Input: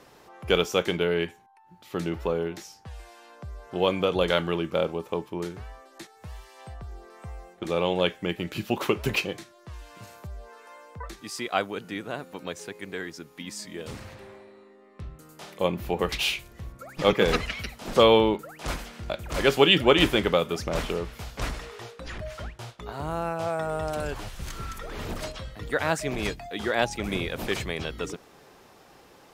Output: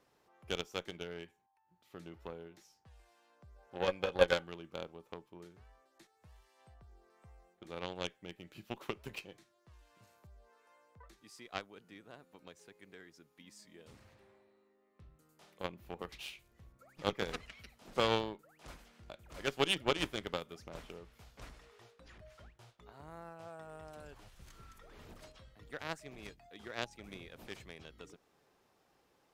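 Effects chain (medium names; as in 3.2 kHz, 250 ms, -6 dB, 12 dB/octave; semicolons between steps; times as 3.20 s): partial rectifier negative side -3 dB; in parallel at -1.5 dB: compression, threshold -36 dBFS, peak gain reduction 20.5 dB; 3.56–4.44 s: on the sum: small resonant body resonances 540/790/1500/2500 Hz, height 13 dB, ringing for 75 ms; Chebyshev shaper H 3 -15 dB, 4 -27 dB, 7 -27 dB, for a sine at -2 dBFS; trim -6.5 dB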